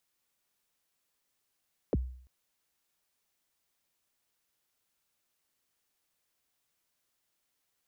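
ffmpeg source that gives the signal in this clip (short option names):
-f lavfi -i "aevalsrc='0.075*pow(10,-3*t/0.57)*sin(2*PI*(600*0.031/log(63/600)*(exp(log(63/600)*min(t,0.031)/0.031)-1)+63*max(t-0.031,0)))':d=0.34:s=44100"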